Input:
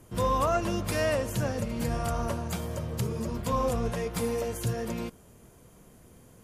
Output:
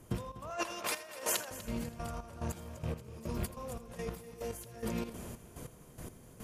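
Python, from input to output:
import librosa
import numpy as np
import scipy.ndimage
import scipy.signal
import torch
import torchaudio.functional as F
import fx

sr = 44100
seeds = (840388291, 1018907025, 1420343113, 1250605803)

p1 = fx.rattle_buzz(x, sr, strikes_db=-31.0, level_db=-41.0)
p2 = fx.highpass(p1, sr, hz=670.0, slope=12, at=(0.5, 1.51))
p3 = fx.high_shelf(p2, sr, hz=8000.0, db=7.5, at=(3.09, 4.71))
p4 = fx.over_compress(p3, sr, threshold_db=-39.0, ratio=-1.0)
p5 = fx.step_gate(p4, sr, bpm=143, pattern='.xx.xx..x...x..', floor_db=-12.0, edge_ms=4.5)
p6 = p5 + fx.echo_heads(p5, sr, ms=82, heads='first and third', feedback_pct=45, wet_db=-16, dry=0)
y = F.gain(torch.from_numpy(p6), 2.0).numpy()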